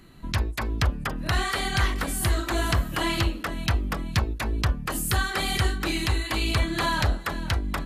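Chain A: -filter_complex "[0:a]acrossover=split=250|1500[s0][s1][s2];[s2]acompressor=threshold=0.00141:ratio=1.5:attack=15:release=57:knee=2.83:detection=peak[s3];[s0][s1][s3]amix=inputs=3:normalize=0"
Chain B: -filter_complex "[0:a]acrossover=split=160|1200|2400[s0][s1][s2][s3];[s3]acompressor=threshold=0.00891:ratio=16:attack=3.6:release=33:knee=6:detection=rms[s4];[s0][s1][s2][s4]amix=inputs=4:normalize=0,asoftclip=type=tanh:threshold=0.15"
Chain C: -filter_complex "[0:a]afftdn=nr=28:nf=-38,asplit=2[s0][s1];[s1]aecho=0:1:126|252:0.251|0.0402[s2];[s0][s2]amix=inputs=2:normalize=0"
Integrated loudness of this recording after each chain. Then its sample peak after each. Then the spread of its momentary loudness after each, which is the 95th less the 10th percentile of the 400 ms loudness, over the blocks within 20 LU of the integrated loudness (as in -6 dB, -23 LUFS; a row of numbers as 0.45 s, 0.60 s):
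-28.0 LUFS, -28.5 LUFS, -26.5 LUFS; -11.5 dBFS, -17.0 dBFS, -11.0 dBFS; 3 LU, 3 LU, 4 LU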